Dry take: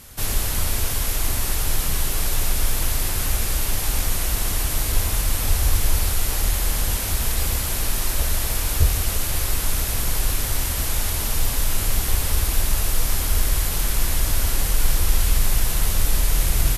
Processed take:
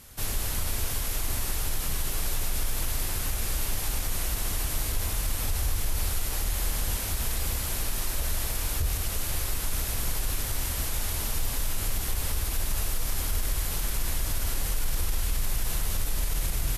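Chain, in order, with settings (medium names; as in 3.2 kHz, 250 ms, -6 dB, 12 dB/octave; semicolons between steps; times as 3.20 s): peak limiter -12 dBFS, peak gain reduction 8 dB; trim -6 dB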